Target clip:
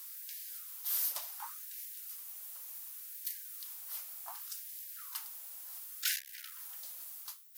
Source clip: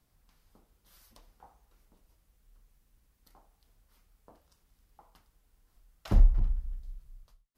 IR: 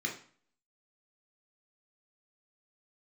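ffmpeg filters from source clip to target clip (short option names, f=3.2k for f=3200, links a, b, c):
-filter_complex "[0:a]aemphasis=mode=production:type=riaa,asplit=2[a][b];[b]aeval=exprs='0.0944*sin(PI/2*2.82*val(0)/0.0944)':c=same,volume=-4dB[c];[a][c]amix=inputs=2:normalize=0,asplit=3[d][e][f];[e]asetrate=55563,aresample=44100,atempo=0.793701,volume=-14dB[g];[f]asetrate=58866,aresample=44100,atempo=0.749154,volume=-18dB[h];[d][g][h]amix=inputs=3:normalize=0,asoftclip=type=tanh:threshold=-29.5dB,afftfilt=real='re*gte(b*sr/1024,500*pow(1600/500,0.5+0.5*sin(2*PI*0.68*pts/sr)))':imag='im*gte(b*sr/1024,500*pow(1600/500,0.5+0.5*sin(2*PI*0.68*pts/sr)))':win_size=1024:overlap=0.75,volume=3.5dB"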